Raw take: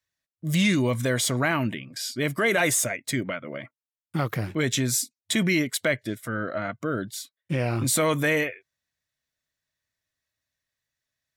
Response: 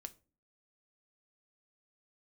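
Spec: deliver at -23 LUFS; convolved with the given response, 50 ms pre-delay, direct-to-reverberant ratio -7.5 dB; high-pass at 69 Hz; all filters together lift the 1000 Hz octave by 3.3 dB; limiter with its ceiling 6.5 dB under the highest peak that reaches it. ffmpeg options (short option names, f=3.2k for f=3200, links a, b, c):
-filter_complex "[0:a]highpass=69,equalizer=f=1k:t=o:g=4.5,alimiter=limit=-14.5dB:level=0:latency=1,asplit=2[a][b];[1:a]atrim=start_sample=2205,adelay=50[c];[b][c]afir=irnorm=-1:irlink=0,volume=12.5dB[d];[a][d]amix=inputs=2:normalize=0,volume=-5dB"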